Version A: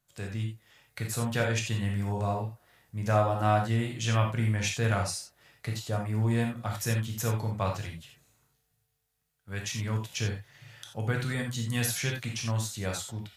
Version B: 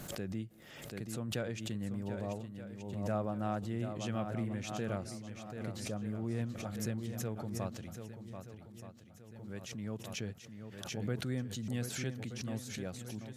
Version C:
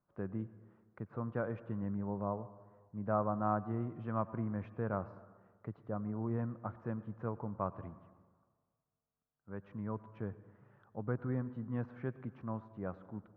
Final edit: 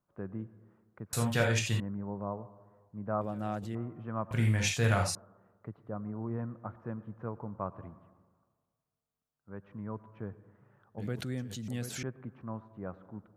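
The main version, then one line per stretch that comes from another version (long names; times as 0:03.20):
C
0:01.13–0:01.80: punch in from A
0:03.21–0:03.75: punch in from B
0:04.31–0:05.15: punch in from A
0:10.98–0:12.03: punch in from B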